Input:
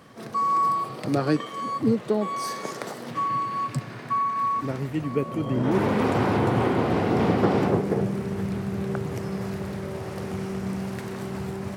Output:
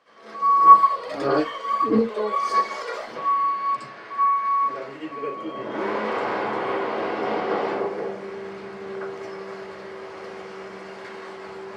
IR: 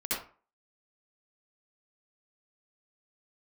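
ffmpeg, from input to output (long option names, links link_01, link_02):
-filter_complex "[0:a]acrossover=split=390 6600:gain=0.0794 1 0.0631[link_01][link_02][link_03];[link_01][link_02][link_03]amix=inputs=3:normalize=0,asplit=3[link_04][link_05][link_06];[link_04]afade=type=out:start_time=0.56:duration=0.02[link_07];[link_05]aphaser=in_gain=1:out_gain=1:delay=2.1:decay=0.75:speed=1.6:type=sinusoidal,afade=type=in:start_time=0.56:duration=0.02,afade=type=out:start_time=3.11:duration=0.02[link_08];[link_06]afade=type=in:start_time=3.11:duration=0.02[link_09];[link_07][link_08][link_09]amix=inputs=3:normalize=0[link_10];[1:a]atrim=start_sample=2205,afade=type=out:start_time=0.21:duration=0.01,atrim=end_sample=9702[link_11];[link_10][link_11]afir=irnorm=-1:irlink=0,volume=-5dB"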